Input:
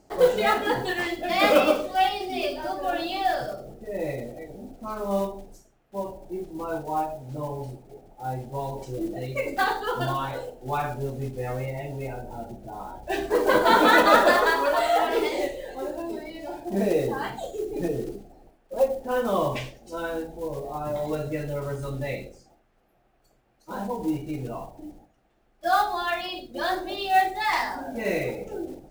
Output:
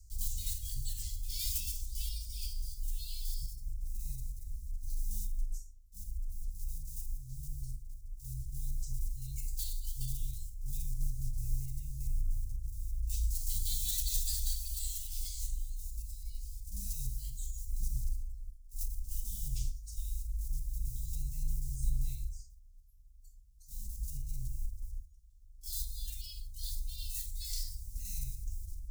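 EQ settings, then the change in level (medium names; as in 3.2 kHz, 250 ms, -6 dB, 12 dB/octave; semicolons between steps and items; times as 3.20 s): inverse Chebyshev band-stop 320–1400 Hz, stop band 80 dB; treble shelf 2.2 kHz -10.5 dB; +14.0 dB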